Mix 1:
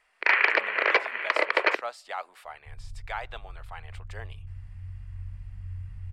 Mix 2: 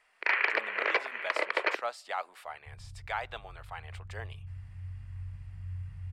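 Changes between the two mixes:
first sound −6.0 dB
second sound: add high-pass filter 63 Hz

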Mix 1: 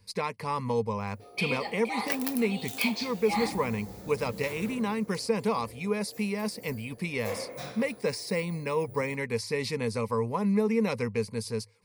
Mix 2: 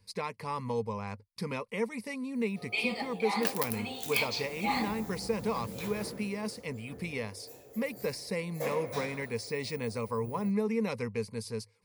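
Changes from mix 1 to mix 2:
speech −4.5 dB
background: entry +1.35 s

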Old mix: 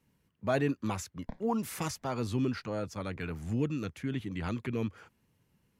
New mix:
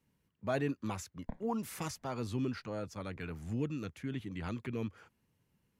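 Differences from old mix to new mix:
speech −4.5 dB
background: add high-frequency loss of the air 390 metres

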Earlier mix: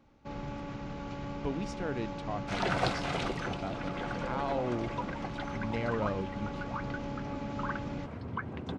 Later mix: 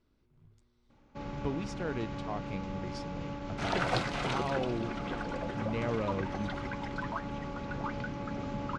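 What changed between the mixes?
first sound: entry +0.90 s
second sound: entry +1.10 s
master: add parametric band 700 Hz −2.5 dB 0.24 octaves

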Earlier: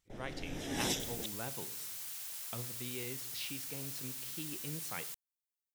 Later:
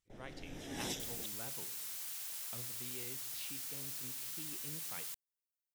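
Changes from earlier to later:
speech −7.0 dB
first sound −6.0 dB

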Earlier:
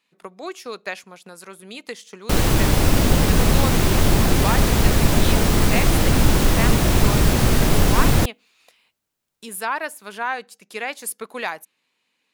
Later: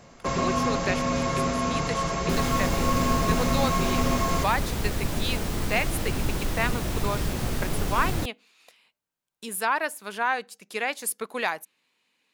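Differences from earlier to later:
first sound: unmuted
second sound −11.5 dB

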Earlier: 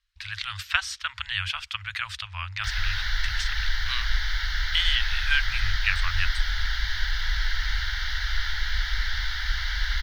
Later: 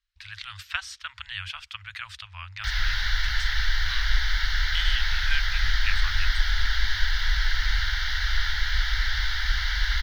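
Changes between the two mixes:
speech −6.0 dB
reverb: on, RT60 1.6 s

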